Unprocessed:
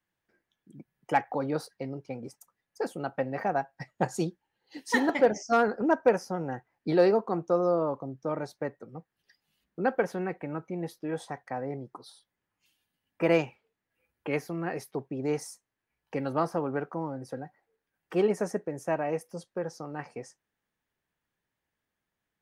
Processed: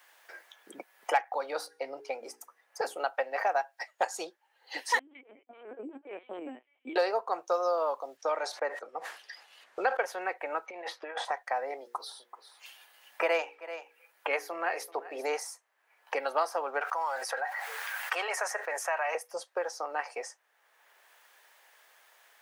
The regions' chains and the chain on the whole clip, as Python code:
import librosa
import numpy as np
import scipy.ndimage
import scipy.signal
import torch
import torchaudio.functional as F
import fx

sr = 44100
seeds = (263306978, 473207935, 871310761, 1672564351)

y = fx.chain(x, sr, fx.peak_eq(hz=86.0, db=11.0, octaves=2.6),
    fx.hum_notches(base_hz=60, count=7),
    fx.comb_fb(f0_hz=160.0, decay_s=0.6, harmonics='odd', damping=0.0, mix_pct=30), at=(1.52, 2.97))
y = fx.chain(y, sr, fx.over_compress(threshold_db=-31.0, ratio=-1.0),
    fx.formant_cascade(vowel='i'),
    fx.lpc_vocoder(seeds[0], excitation='pitch_kept', order=10), at=(4.99, 6.96))
y = fx.chain(y, sr, fx.lowpass(hz=8900.0, slope=12),
    fx.sustainer(db_per_s=130.0), at=(8.17, 10.01))
y = fx.chain(y, sr, fx.lowpass(hz=2500.0, slope=12),
    fx.tilt_eq(slope=3.0),
    fx.over_compress(threshold_db=-42.0, ratio=-0.5), at=(10.66, 11.25))
y = fx.chain(y, sr, fx.highpass(hz=130.0, slope=12),
    fx.hum_notches(base_hz=60, count=9),
    fx.echo_single(ms=384, db=-20.0), at=(11.81, 15.29))
y = fx.chain(y, sr, fx.highpass(hz=1100.0, slope=12),
    fx.env_flatten(amount_pct=70), at=(16.81, 19.15))
y = scipy.signal.sosfilt(scipy.signal.butter(4, 580.0, 'highpass', fs=sr, output='sos'), y)
y = fx.band_squash(y, sr, depth_pct=70)
y = F.gain(torch.from_numpy(y), 5.0).numpy()